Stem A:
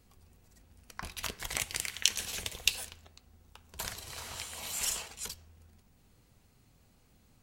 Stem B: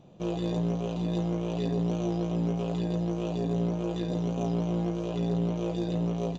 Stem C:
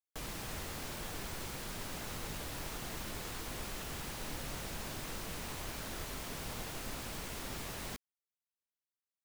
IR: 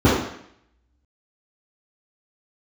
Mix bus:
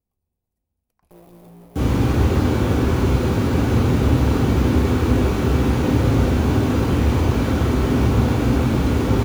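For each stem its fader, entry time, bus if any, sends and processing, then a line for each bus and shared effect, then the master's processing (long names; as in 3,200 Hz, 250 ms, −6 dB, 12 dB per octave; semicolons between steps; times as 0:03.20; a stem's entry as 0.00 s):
−19.0 dB, 0.00 s, bus A, no send, downward compressor, threshold −38 dBFS, peak gain reduction 17.5 dB
−12.5 dB, 0.90 s, bus A, no send, bit reduction 5 bits
+0.5 dB, 1.60 s, no bus, send −5.5 dB, no processing
bus A: 0.0 dB, flat-topped bell 3,200 Hz −12 dB 3 octaves; downward compressor 1.5 to 1, threshold −49 dBFS, peak gain reduction 4.5 dB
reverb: on, RT60 0.70 s, pre-delay 3 ms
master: parametric band 2,400 Hz +2.5 dB 0.37 octaves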